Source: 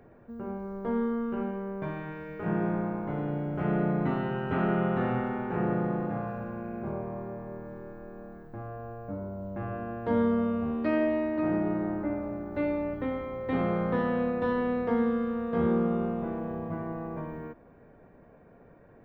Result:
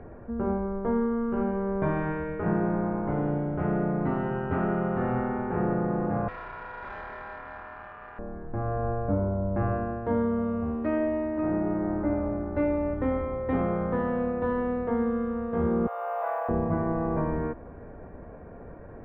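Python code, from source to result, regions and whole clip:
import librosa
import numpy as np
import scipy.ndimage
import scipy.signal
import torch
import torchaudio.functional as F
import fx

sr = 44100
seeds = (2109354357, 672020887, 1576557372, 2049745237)

y = fx.chain(x, sr, fx.hum_notches(base_hz=50, count=10),
    fx.ring_mod(carrier_hz=1200.0),
    fx.tube_stage(drive_db=40.0, bias=0.55), at=(6.28, 8.19))
y = fx.chain(y, sr, fx.steep_highpass(hz=580.0, slope=48),
    fx.resample_bad(factor=3, down='none', up='zero_stuff'),
    fx.env_flatten(amount_pct=50), at=(15.87, 16.49))
y = scipy.signal.sosfilt(scipy.signal.butter(2, 1700.0, 'lowpass', fs=sr, output='sos'), y)
y = fx.low_shelf_res(y, sr, hz=100.0, db=6.0, q=1.5)
y = fx.rider(y, sr, range_db=10, speed_s=0.5)
y = F.gain(torch.from_numpy(y), 3.0).numpy()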